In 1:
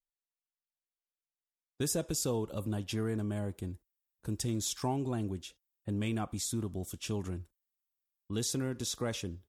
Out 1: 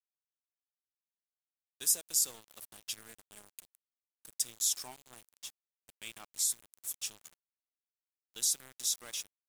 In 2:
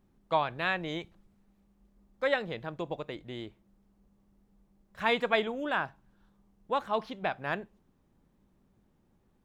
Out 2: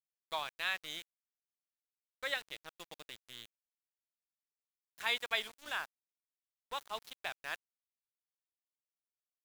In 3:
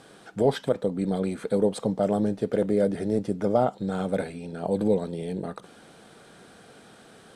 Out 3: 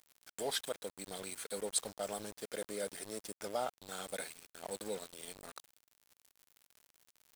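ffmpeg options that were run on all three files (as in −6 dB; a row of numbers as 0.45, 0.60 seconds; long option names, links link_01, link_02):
-af "aderivative,aeval=exprs='val(0)*gte(abs(val(0)),0.00266)':channel_layout=same,volume=6.5dB"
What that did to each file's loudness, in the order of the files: +2.5, −7.0, −14.5 LU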